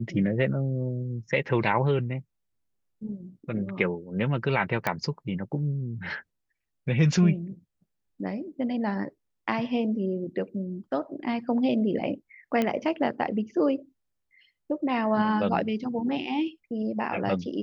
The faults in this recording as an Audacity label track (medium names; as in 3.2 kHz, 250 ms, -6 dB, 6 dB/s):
4.870000	4.870000	pop -11 dBFS
12.620000	12.620000	pop -13 dBFS